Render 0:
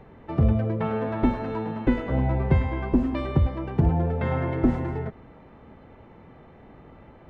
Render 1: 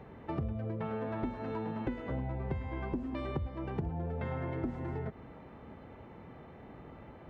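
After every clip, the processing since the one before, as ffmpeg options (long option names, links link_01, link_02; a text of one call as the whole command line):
ffmpeg -i in.wav -af "highpass=46,acompressor=threshold=-32dB:ratio=6,volume=-1.5dB" out.wav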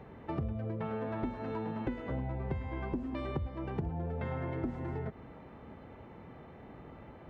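ffmpeg -i in.wav -af anull out.wav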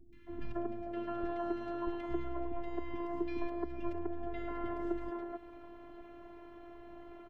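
ffmpeg -i in.wav -filter_complex "[0:a]afftfilt=real='hypot(re,im)*cos(PI*b)':imag='0':win_size=512:overlap=0.75,acrossover=split=270|1800[link_01][link_02][link_03];[link_03]adelay=130[link_04];[link_02]adelay=270[link_05];[link_01][link_05][link_04]amix=inputs=3:normalize=0,volume=4.5dB" out.wav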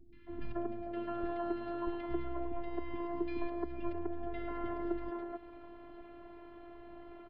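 ffmpeg -i in.wav -af "aresample=11025,aresample=44100" out.wav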